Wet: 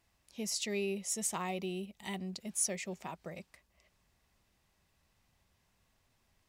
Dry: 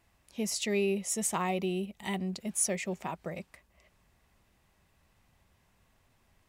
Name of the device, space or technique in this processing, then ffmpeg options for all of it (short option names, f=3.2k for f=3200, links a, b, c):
presence and air boost: -af "equalizer=f=5k:t=o:w=1.3:g=5.5,highshelf=f=11k:g=3.5,volume=-6.5dB"